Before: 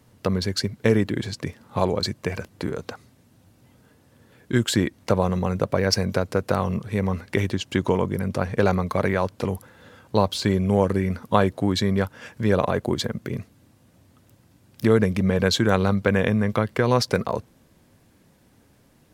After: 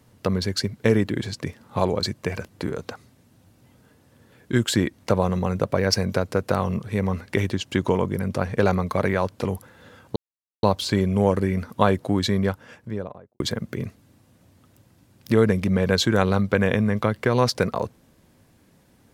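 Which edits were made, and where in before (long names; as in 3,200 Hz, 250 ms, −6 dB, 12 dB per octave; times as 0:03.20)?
0:10.16: splice in silence 0.47 s
0:11.84–0:12.93: fade out and dull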